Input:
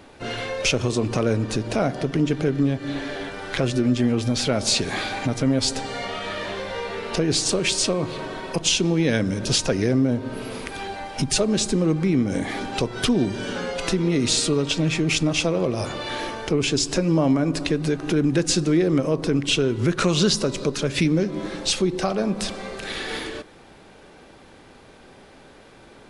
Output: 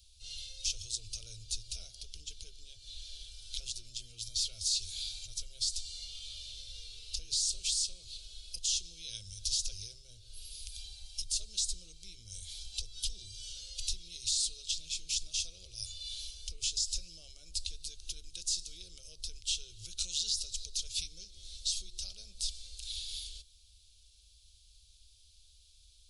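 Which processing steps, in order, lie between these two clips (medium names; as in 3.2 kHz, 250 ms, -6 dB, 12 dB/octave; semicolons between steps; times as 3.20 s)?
inverse Chebyshev band-stop 130–2000 Hz, stop band 40 dB; peak limiter -19 dBFS, peak gain reduction 9.5 dB; trim -2.5 dB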